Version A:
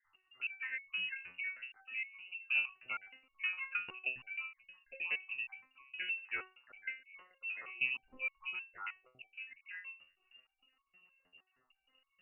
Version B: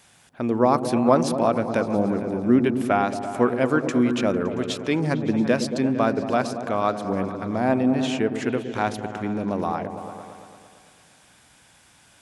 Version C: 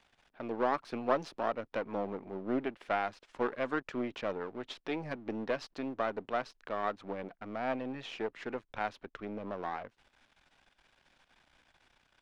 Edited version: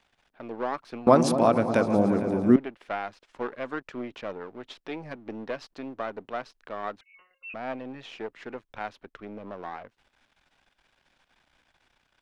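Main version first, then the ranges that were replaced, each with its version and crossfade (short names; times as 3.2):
C
1.07–2.56 from B
7.01–7.54 from A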